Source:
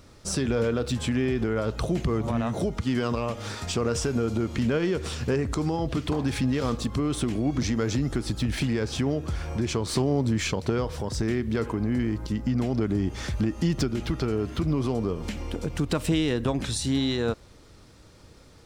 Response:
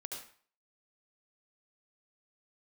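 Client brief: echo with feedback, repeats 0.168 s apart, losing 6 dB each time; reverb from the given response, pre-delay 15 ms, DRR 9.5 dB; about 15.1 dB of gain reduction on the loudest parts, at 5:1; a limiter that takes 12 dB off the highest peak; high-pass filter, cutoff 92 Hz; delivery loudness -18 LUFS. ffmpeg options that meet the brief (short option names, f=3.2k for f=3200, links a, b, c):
-filter_complex "[0:a]highpass=92,acompressor=threshold=-39dB:ratio=5,alimiter=level_in=10.5dB:limit=-24dB:level=0:latency=1,volume=-10.5dB,aecho=1:1:168|336|504|672|840|1008:0.501|0.251|0.125|0.0626|0.0313|0.0157,asplit=2[a][b];[1:a]atrim=start_sample=2205,adelay=15[c];[b][c]afir=irnorm=-1:irlink=0,volume=-8dB[d];[a][d]amix=inputs=2:normalize=0,volume=24.5dB"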